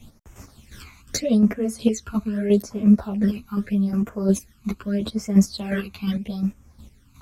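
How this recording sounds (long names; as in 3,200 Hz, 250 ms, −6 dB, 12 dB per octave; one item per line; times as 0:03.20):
phaser sweep stages 12, 0.8 Hz, lowest notch 550–4,100 Hz
chopped level 2.8 Hz, depth 60%, duty 25%
a shimmering, thickened sound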